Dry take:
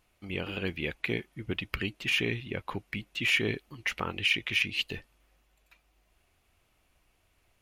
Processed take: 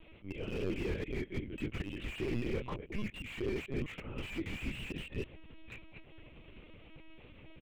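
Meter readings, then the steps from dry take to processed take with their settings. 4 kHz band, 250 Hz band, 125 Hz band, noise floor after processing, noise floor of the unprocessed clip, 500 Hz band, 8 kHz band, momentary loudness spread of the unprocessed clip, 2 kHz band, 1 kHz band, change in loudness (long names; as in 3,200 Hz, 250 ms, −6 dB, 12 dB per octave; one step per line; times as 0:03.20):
−16.5 dB, −2.0 dB, −2.5 dB, −56 dBFS, −71 dBFS, −2.0 dB, −13.0 dB, 11 LU, −14.0 dB, −9.0 dB, −9.0 dB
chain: delay that plays each chunk backwards 158 ms, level −8.5 dB
high-frequency loss of the air 330 metres
double-tracking delay 24 ms −5 dB
brickwall limiter −25 dBFS, peak gain reduction 9 dB
volume swells 279 ms
reversed playback
downward compressor 4 to 1, threshold −51 dBFS, peak gain reduction 16.5 dB
reversed playback
linear-prediction vocoder at 8 kHz pitch kept
flat-topped bell 1,100 Hz −9 dB
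slew-rate limiting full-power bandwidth 2.1 Hz
level +16.5 dB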